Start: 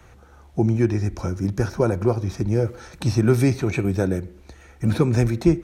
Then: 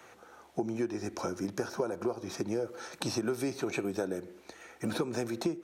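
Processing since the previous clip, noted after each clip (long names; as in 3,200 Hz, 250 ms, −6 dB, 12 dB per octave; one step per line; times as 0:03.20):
high-pass filter 330 Hz 12 dB per octave
dynamic equaliser 2,100 Hz, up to −7 dB, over −51 dBFS, Q 3
downward compressor 6 to 1, threshold −29 dBFS, peak gain reduction 13 dB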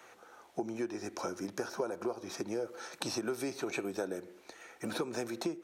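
low-shelf EQ 190 Hz −11 dB
level −1 dB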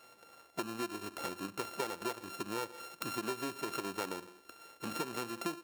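samples sorted by size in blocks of 32 samples
level −2.5 dB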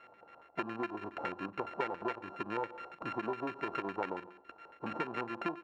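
auto-filter low-pass square 7.2 Hz 840–2,100 Hz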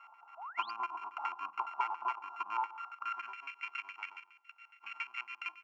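high-pass filter sweep 970 Hz → 2,100 Hz, 0:02.69–0:03.49
sound drawn into the spectrogram rise, 0:00.37–0:00.71, 620–5,000 Hz −43 dBFS
phaser with its sweep stopped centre 2,600 Hz, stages 8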